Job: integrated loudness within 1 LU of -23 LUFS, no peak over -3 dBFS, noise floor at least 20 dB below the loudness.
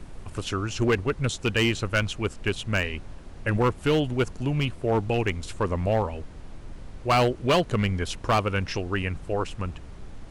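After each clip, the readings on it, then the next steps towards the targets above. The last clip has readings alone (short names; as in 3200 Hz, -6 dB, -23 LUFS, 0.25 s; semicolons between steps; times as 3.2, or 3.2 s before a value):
clipped 1.1%; flat tops at -16.0 dBFS; noise floor -43 dBFS; noise floor target -47 dBFS; loudness -26.5 LUFS; peak -16.0 dBFS; loudness target -23.0 LUFS
-> clip repair -16 dBFS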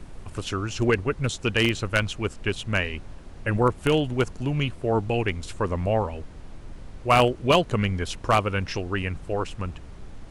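clipped 0.0%; noise floor -43 dBFS; noise floor target -46 dBFS
-> noise print and reduce 6 dB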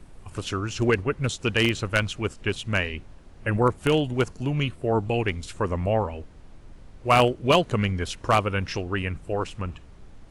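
noise floor -48 dBFS; loudness -25.0 LUFS; peak -7.0 dBFS; loudness target -23.0 LUFS
-> gain +2 dB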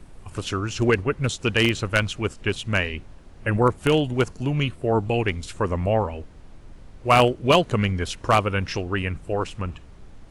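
loudness -23.0 LUFS; peak -5.0 dBFS; noise floor -46 dBFS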